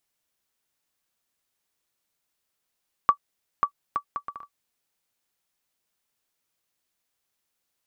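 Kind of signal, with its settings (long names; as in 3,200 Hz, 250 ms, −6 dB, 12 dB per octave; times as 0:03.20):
bouncing ball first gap 0.54 s, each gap 0.61, 1,150 Hz, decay 84 ms −7 dBFS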